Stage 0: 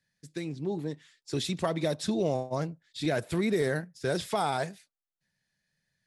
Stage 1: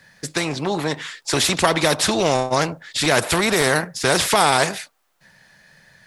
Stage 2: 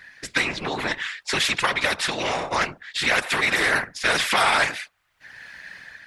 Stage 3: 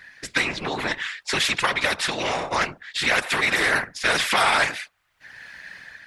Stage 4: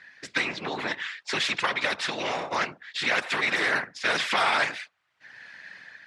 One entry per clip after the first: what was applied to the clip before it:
bell 930 Hz +11 dB 2.4 oct; spectral compressor 2:1; gain +6 dB
bell 2100 Hz +14.5 dB 2.2 oct; whisperiser; AGC gain up to 7 dB; gain -7 dB
nothing audible
BPF 140–6100 Hz; gain -4 dB

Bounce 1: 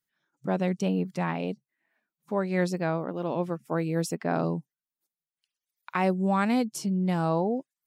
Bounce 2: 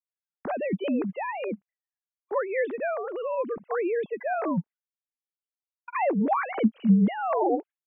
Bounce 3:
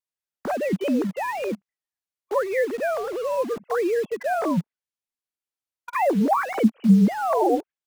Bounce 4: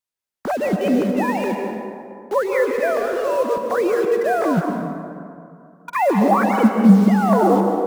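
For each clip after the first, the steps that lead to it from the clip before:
sine-wave speech; expander -45 dBFS; gain +1 dB
treble ducked by the level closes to 2000 Hz, closed at -22.5 dBFS; in parallel at -7.5 dB: bit-crush 6-bit; on the sum: gain +1 dB
plate-style reverb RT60 2.4 s, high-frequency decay 0.45×, pre-delay 0.115 s, DRR 3.5 dB; gain +3.5 dB

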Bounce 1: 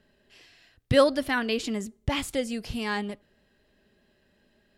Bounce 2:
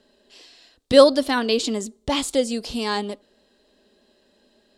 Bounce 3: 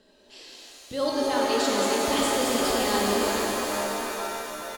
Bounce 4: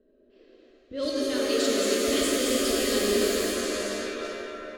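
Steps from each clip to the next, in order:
graphic EQ 125/250/500/1000/2000/4000/8000 Hz -12/+9/+8/+7/-3/+11/+10 dB; gain -2 dB
feedback echo 0.412 s, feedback 40%, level -11 dB; reverse; compressor 6:1, threshold -27 dBFS, peak gain reduction 19 dB; reverse; shimmer reverb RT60 3.7 s, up +7 st, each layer -2 dB, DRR -2.5 dB
echo with dull and thin repeats by turns 0.136 s, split 1100 Hz, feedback 61%, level -3 dB; low-pass opened by the level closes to 780 Hz, open at -20 dBFS; fixed phaser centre 360 Hz, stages 4

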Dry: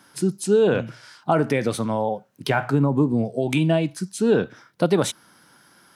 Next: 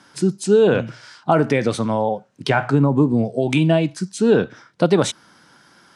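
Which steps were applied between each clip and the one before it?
LPF 8600 Hz 24 dB/oct; gain +3.5 dB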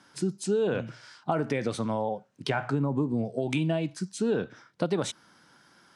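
compressor 2.5:1, threshold -17 dBFS, peak gain reduction 5.5 dB; gain -7.5 dB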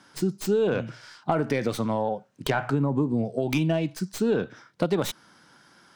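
tracing distortion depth 0.13 ms; gain +3 dB

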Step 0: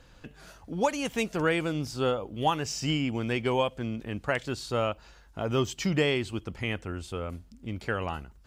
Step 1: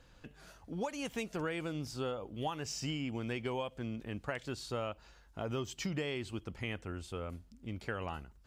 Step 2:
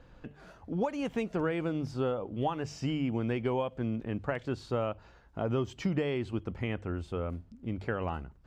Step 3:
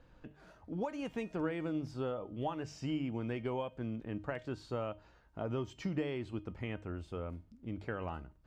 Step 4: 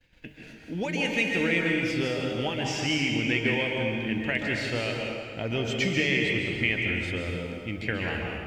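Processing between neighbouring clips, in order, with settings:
compressor, threshold -27 dBFS, peak gain reduction 8 dB; gain -6 dB
LPF 1100 Hz 6 dB/oct; notches 50/100/150 Hz; gain +7.5 dB
resonator 310 Hz, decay 0.33 s, harmonics all, mix 60%; gain +1 dB
expander -53 dBFS; resonant high shelf 1600 Hz +10 dB, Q 3; plate-style reverb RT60 2.1 s, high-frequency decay 0.75×, pre-delay 0.12 s, DRR -0.5 dB; gain +6.5 dB

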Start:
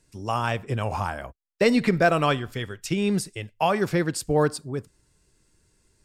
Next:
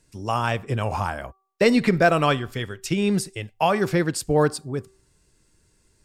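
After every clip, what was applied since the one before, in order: de-hum 384.9 Hz, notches 3; gain +2 dB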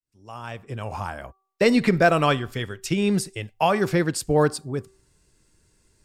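opening faded in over 1.80 s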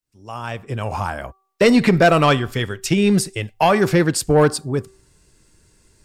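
soft clip -13 dBFS, distortion -16 dB; gain +7 dB

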